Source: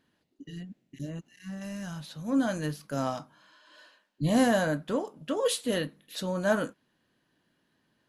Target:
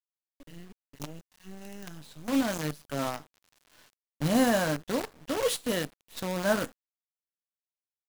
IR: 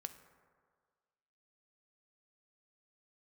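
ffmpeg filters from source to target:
-af "aeval=exprs='0.237*(cos(1*acos(clip(val(0)/0.237,-1,1)))-cos(1*PI/2))+0.00841*(cos(3*acos(clip(val(0)/0.237,-1,1)))-cos(3*PI/2))+0.00188*(cos(5*acos(clip(val(0)/0.237,-1,1)))-cos(5*PI/2))+0.00473*(cos(7*acos(clip(val(0)/0.237,-1,1)))-cos(7*PI/2))+0.00266*(cos(8*acos(clip(val(0)/0.237,-1,1)))-cos(8*PI/2))':channel_layout=same,acrusher=bits=6:dc=4:mix=0:aa=0.000001"

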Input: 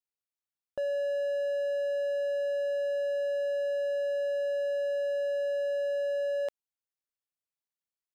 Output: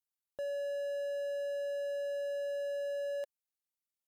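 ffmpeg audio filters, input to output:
ffmpeg -i in.wav -af "atempo=2,aemphasis=mode=production:type=cd,volume=-6dB" out.wav

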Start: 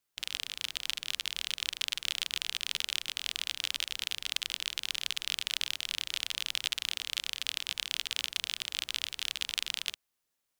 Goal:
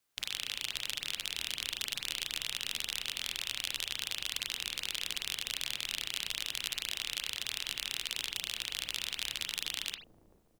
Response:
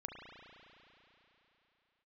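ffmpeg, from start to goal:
-filter_complex "[0:a]acrossover=split=580|7300[link_01][link_02][link_03];[link_01]aecho=1:1:442|884|1326|1768|2210:0.631|0.24|0.0911|0.0346|0.0132[link_04];[link_02]alimiter=limit=-19.5dB:level=0:latency=1[link_05];[link_04][link_05][link_03]amix=inputs=3:normalize=0[link_06];[1:a]atrim=start_sample=2205,atrim=end_sample=4410[link_07];[link_06][link_07]afir=irnorm=-1:irlink=0,volume=7.5dB"

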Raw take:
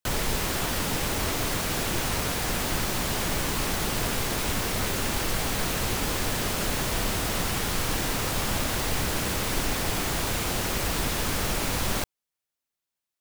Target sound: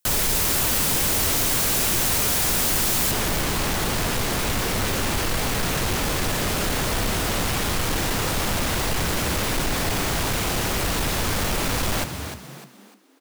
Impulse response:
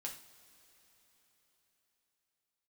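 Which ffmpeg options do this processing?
-filter_complex "[0:a]asetnsamples=nb_out_samples=441:pad=0,asendcmd='3.11 highshelf g -2',highshelf=frequency=5500:gain=11,asplit=5[link_01][link_02][link_03][link_04][link_05];[link_02]adelay=301,afreqshift=64,volume=-11.5dB[link_06];[link_03]adelay=602,afreqshift=128,volume=-20.6dB[link_07];[link_04]adelay=903,afreqshift=192,volume=-29.7dB[link_08];[link_05]adelay=1204,afreqshift=256,volume=-38.9dB[link_09];[link_01][link_06][link_07][link_08][link_09]amix=inputs=5:normalize=0,asoftclip=type=tanh:threshold=-24.5dB,volume=6.5dB"

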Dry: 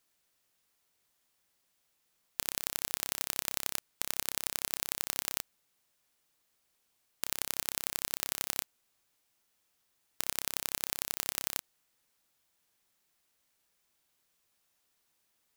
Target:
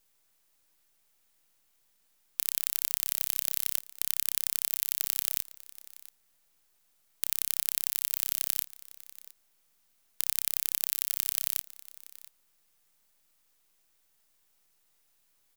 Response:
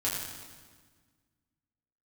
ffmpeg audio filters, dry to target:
-filter_complex "[0:a]highpass=660,aderivative,bandreject=frequency=3100:width=17,acrossover=split=4100[link_01][link_02];[link_02]acontrast=81[link_03];[link_01][link_03]amix=inputs=2:normalize=0,acrusher=bits=9:dc=4:mix=0:aa=0.000001,asplit=2[link_04][link_05];[link_05]aecho=0:1:684:0.106[link_06];[link_04][link_06]amix=inputs=2:normalize=0,volume=-1dB"

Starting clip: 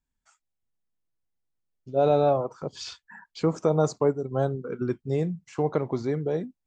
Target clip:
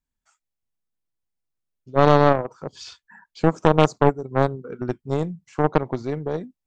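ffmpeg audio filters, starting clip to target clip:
ffmpeg -i in.wav -af "aeval=exprs='0.335*(cos(1*acos(clip(val(0)/0.335,-1,1)))-cos(1*PI/2))+0.0473*(cos(3*acos(clip(val(0)/0.335,-1,1)))-cos(3*PI/2))+0.168*(cos(4*acos(clip(val(0)/0.335,-1,1)))-cos(4*PI/2))+0.075*(cos(6*acos(clip(val(0)/0.335,-1,1)))-cos(6*PI/2))+0.00266*(cos(7*acos(clip(val(0)/0.335,-1,1)))-cos(7*PI/2))':channel_layout=same,volume=4dB" out.wav

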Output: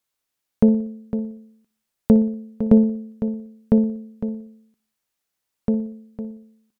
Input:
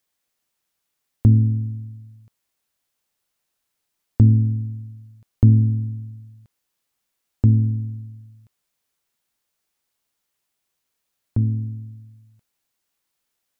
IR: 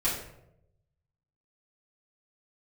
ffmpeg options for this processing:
-filter_complex "[0:a]asplit=2[link_01][link_02];[link_02]aecho=0:1:120|240|360|480:0.133|0.0667|0.0333|0.0167[link_03];[link_01][link_03]amix=inputs=2:normalize=0,asetrate=88200,aresample=44100,asplit=2[link_04][link_05];[link_05]aecho=0:1:506:0.299[link_06];[link_04][link_06]amix=inputs=2:normalize=0"

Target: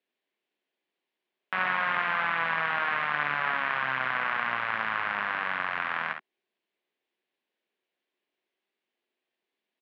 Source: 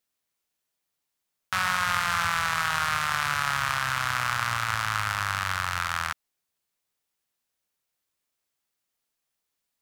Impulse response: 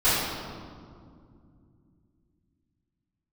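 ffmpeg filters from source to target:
-filter_complex "[0:a]highpass=frequency=210:width=0.5412,highpass=frequency=210:width=1.3066,equalizer=frequency=370:width_type=q:width=4:gain=8,equalizer=frequency=880:width_type=q:width=4:gain=-3,equalizer=frequency=1300:width_type=q:width=4:gain=-9,lowpass=frequency=3300:width=0.5412,lowpass=frequency=3300:width=1.3066,acrossover=split=2500[link_01][link_02];[link_02]acompressor=threshold=-53dB:ratio=4:attack=1:release=60[link_03];[link_01][link_03]amix=inputs=2:normalize=0,aecho=1:1:54|68:0.376|0.316,volume=3dB"

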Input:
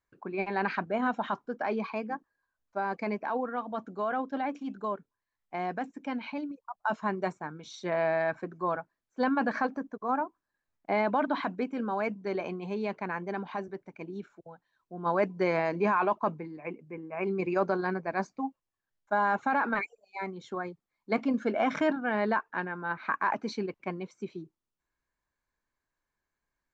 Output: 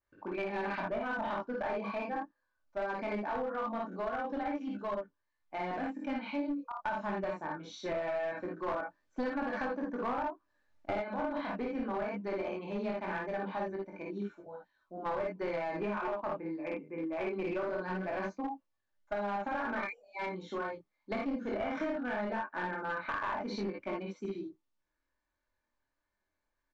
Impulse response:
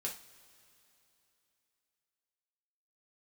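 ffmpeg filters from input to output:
-filter_complex "[0:a]equalizer=frequency=560:width_type=o:width=0.83:gain=2.5,aecho=1:1:3.4:0.4,aecho=1:1:49|59:0.668|0.708,asettb=1/sr,asplit=3[link_01][link_02][link_03];[link_01]atrim=end=8.684[link_04];[link_02]atrim=start=8.68:end=11.02,asetpts=PTS-STARTPTS,afade=type=in:duration=0.004:curve=qsin,afade=type=out:start_time=2.336:duration=0.004:curve=qsin,acontrast=84[link_05];[link_03]atrim=start=11.016[link_06];[link_04][link_05]acrossfade=duration=0.004:curve1=hsin:curve2=qsin[link_07];[link_07][link_06]acrossfade=duration=0.004:curve1=qsin:curve2=hsin,flanger=delay=20:depth=5.4:speed=0.21,acompressor=threshold=-30dB:ratio=16,aeval=exprs='clip(val(0),-1,0.0251)':channel_layout=same,lowpass=5600,adynamicequalizer=threshold=0.00316:dfrequency=2900:dqfactor=0.7:tfrequency=2900:tqfactor=0.7:attack=5:release=100:ratio=0.375:range=1.5:mode=cutabove:tftype=highshelf"

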